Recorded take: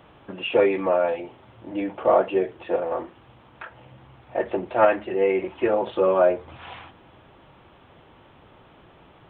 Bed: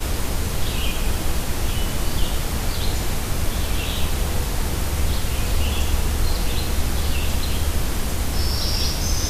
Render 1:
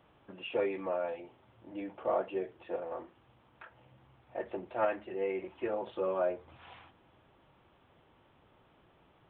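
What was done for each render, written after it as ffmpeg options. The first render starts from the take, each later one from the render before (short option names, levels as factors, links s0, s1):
-af "volume=0.224"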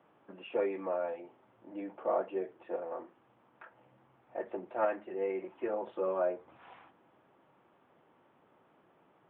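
-filter_complex "[0:a]acrossover=split=150 2300:gain=0.0708 1 0.2[s0][s1][s2];[s0][s1][s2]amix=inputs=3:normalize=0"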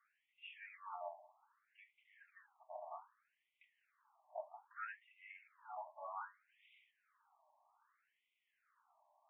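-af "flanger=delay=2.9:depth=6.6:regen=-88:speed=1.3:shape=triangular,afftfilt=real='re*between(b*sr/1024,790*pow(2800/790,0.5+0.5*sin(2*PI*0.63*pts/sr))/1.41,790*pow(2800/790,0.5+0.5*sin(2*PI*0.63*pts/sr))*1.41)':imag='im*between(b*sr/1024,790*pow(2800/790,0.5+0.5*sin(2*PI*0.63*pts/sr))/1.41,790*pow(2800/790,0.5+0.5*sin(2*PI*0.63*pts/sr))*1.41)':win_size=1024:overlap=0.75"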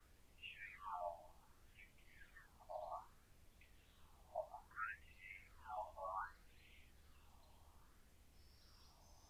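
-filter_complex "[1:a]volume=0.00501[s0];[0:a][s0]amix=inputs=2:normalize=0"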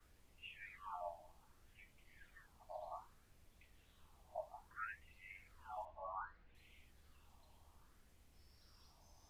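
-filter_complex "[0:a]asettb=1/sr,asplit=3[s0][s1][s2];[s0]atrim=end=5.854[s3];[s1]atrim=start=5.85:end=6.55,asetpts=PTS-STARTPTS,afade=t=in:d=0.004:c=qsin,afade=t=out:st=0.696:d=0.004:c=qsin,lowpass=2600[s4];[s2]atrim=start=6.546[s5];[s3][s4]acrossfade=d=0.004:c1=hsin:c2=qsin[s6];[s6][s5]acrossfade=d=0.004:c1=qsin:c2=hsin"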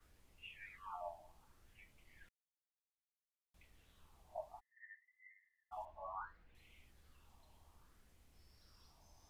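-filter_complex "[0:a]asplit=3[s0][s1][s2];[s0]afade=t=out:st=4.59:d=0.02[s3];[s1]asuperpass=centerf=1900:order=12:qfactor=5.8,afade=t=in:st=4.59:d=0.02,afade=t=out:st=5.71:d=0.02[s4];[s2]afade=t=in:st=5.71:d=0.02[s5];[s3][s4][s5]amix=inputs=3:normalize=0,asplit=3[s6][s7][s8];[s6]atrim=end=2.29,asetpts=PTS-STARTPTS,afade=t=out:st=2.286:d=0.004:c=hsin[s9];[s7]atrim=start=2.29:end=3.54,asetpts=PTS-STARTPTS,volume=0[s10];[s8]atrim=start=3.54,asetpts=PTS-STARTPTS,afade=t=in:d=0.004:c=hsin[s11];[s9][s10][s11]concat=n=3:v=0:a=1"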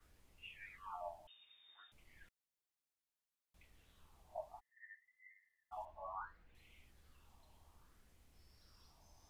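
-filter_complex "[0:a]asettb=1/sr,asplit=3[s0][s1][s2];[s0]atrim=end=1.274[s3];[s1]atrim=start=1.27:end=1.92,asetpts=PTS-STARTPTS,afade=t=in:d=0.004:c=qsin,afade=t=out:st=0.646:d=0.004:c=qsin,lowpass=f=3100:t=q:w=0.5098,lowpass=f=3100:t=q:w=0.6013,lowpass=f=3100:t=q:w=0.9,lowpass=f=3100:t=q:w=2.563,afreqshift=-3700[s4];[s2]atrim=start=1.916[s5];[s3][s4]acrossfade=d=0.004:c1=hsin:c2=qsin[s6];[s6][s5]acrossfade=d=0.004:c1=qsin:c2=hsin"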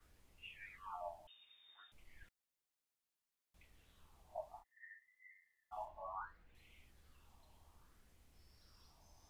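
-filter_complex "[0:a]asettb=1/sr,asplit=3[s0][s1][s2];[s0]atrim=end=1.764[s3];[s1]atrim=start=1.76:end=2.23,asetpts=PTS-STARTPTS,afade=t=in:d=0.004:c=qsin,afade=t=out:st=0.466:d=0.004:c=qsin,asubboost=boost=11.5:cutoff=56[s4];[s2]atrim=start=2.226[s5];[s3][s4]acrossfade=d=0.004:c1=hsin:c2=qsin[s6];[s6][s5]acrossfade=d=0.004:c1=qsin:c2=hsin,asettb=1/sr,asplit=3[s7][s8][s9];[s7]atrim=end=4.564[s10];[s8]atrim=start=4.56:end=6.03,asetpts=PTS-STARTPTS,afade=t=in:d=0.004:c=qsin,afade=t=out:st=1.466:d=0.004:c=qsin,asplit=2[s11][s12];[s12]adelay=33,volume=0.531[s13];[s11][s13]amix=inputs=2:normalize=0,atrim=end_sample=64827[s14];[s9]atrim=start=6.026[s15];[s10][s14]acrossfade=d=0.004:c1=hsin:c2=qsin[s16];[s16][s15]acrossfade=d=0.004:c1=qsin:c2=hsin"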